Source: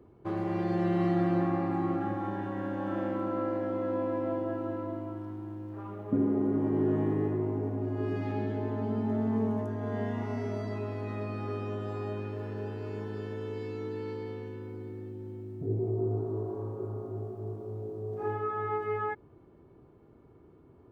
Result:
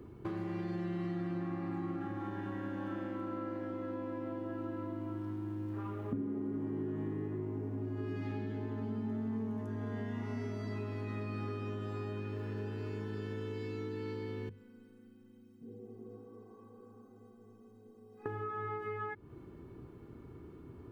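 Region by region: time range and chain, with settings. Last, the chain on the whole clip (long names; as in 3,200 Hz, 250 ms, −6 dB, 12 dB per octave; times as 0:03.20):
0:14.49–0:18.26: low-shelf EQ 140 Hz −10 dB + stiff-string resonator 230 Hz, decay 0.32 s, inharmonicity 0.03 + feedback echo with a high-pass in the loop 88 ms, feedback 80%, high-pass 230 Hz, level −12 dB
whole clip: downward compressor 6 to 1, threshold −42 dBFS; parametric band 650 Hz −9.5 dB 1.3 octaves; mains-hum notches 50/100/150/200 Hz; level +8.5 dB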